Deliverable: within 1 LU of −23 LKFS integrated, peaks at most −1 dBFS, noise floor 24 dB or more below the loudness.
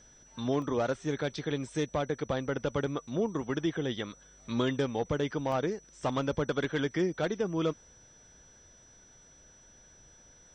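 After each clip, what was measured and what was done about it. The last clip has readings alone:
number of dropouts 2; longest dropout 1.6 ms; interfering tone 5,900 Hz; level of the tone −57 dBFS; integrated loudness −32.5 LKFS; sample peak −18.0 dBFS; target loudness −23.0 LKFS
→ repair the gap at 0:00.62/0:05.52, 1.6 ms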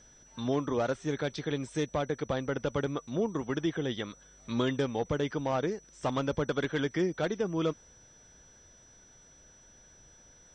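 number of dropouts 0; interfering tone 5,900 Hz; level of the tone −57 dBFS
→ notch filter 5,900 Hz, Q 30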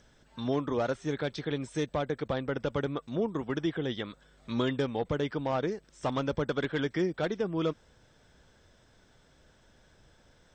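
interfering tone none found; integrated loudness −32.5 LKFS; sample peak −18.0 dBFS; target loudness −23.0 LKFS
→ level +9.5 dB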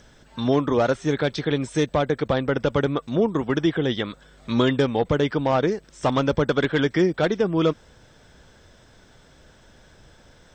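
integrated loudness −23.0 LKFS; sample peak −8.5 dBFS; background noise floor −54 dBFS

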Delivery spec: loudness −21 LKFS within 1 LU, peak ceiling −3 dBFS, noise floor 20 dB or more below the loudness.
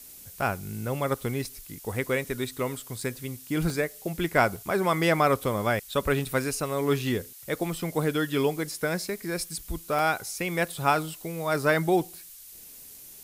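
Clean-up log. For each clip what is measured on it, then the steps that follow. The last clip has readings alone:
number of dropouts 6; longest dropout 1.4 ms; background noise floor −47 dBFS; target noise floor −48 dBFS; integrated loudness −28.0 LKFS; sample peak −7.0 dBFS; target loudness −21.0 LKFS
→ repair the gap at 0:01.45/0:03.01/0:03.70/0:04.56/0:05.44/0:09.99, 1.4 ms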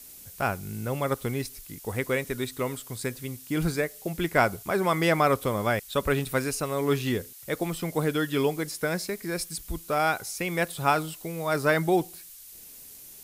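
number of dropouts 0; background noise floor −47 dBFS; target noise floor −48 dBFS
→ noise reduction from a noise print 6 dB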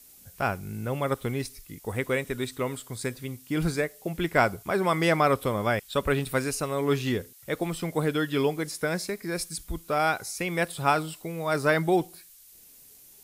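background noise floor −53 dBFS; integrated loudness −28.0 LKFS; sample peak −7.0 dBFS; target loudness −21.0 LKFS
→ level +7 dB
brickwall limiter −3 dBFS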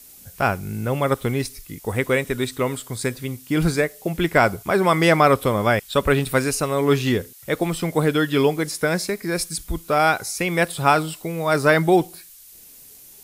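integrated loudness −21.0 LKFS; sample peak −3.0 dBFS; background noise floor −46 dBFS

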